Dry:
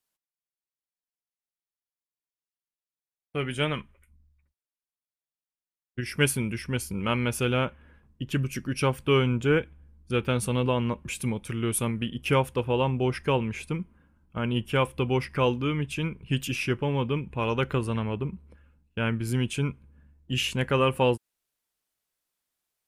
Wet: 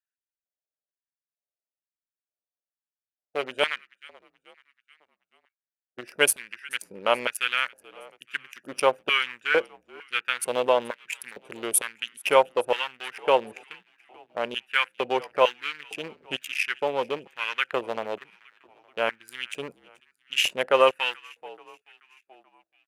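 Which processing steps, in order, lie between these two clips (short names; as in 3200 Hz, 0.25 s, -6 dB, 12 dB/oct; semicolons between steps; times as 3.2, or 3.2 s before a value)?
Wiener smoothing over 41 samples; high shelf 6800 Hz +7.5 dB; on a send: frequency-shifting echo 0.432 s, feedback 54%, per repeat -48 Hz, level -23 dB; on the sum: LFO high-pass square 1.1 Hz 620–1700 Hz; gain +3.5 dB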